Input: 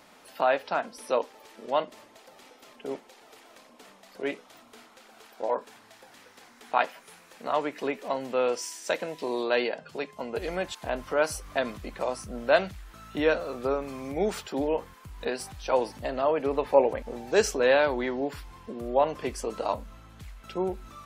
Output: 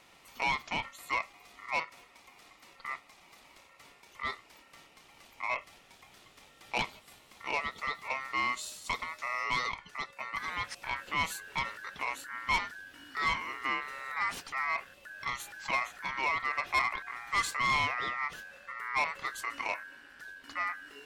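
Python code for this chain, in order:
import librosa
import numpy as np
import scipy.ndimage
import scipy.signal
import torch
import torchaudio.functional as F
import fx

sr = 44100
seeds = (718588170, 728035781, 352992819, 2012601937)

y = x * np.sin(2.0 * np.pi * 1600.0 * np.arange(len(x)) / sr)
y = 10.0 ** (-20.0 / 20.0) * np.tanh(y / 10.0 ** (-20.0 / 20.0))
y = y * 10.0 ** (-1.5 / 20.0)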